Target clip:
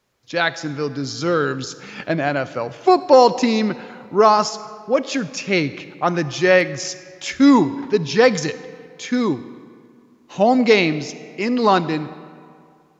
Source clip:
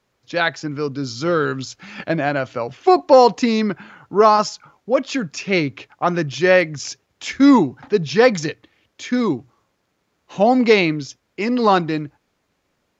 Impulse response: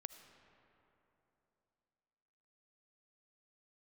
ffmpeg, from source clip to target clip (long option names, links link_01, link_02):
-filter_complex "[0:a]asplit=2[link_01][link_02];[1:a]atrim=start_sample=2205,asetrate=66150,aresample=44100,highshelf=frequency=5100:gain=9.5[link_03];[link_02][link_03]afir=irnorm=-1:irlink=0,volume=6.5dB[link_04];[link_01][link_04]amix=inputs=2:normalize=0,volume=-5.5dB"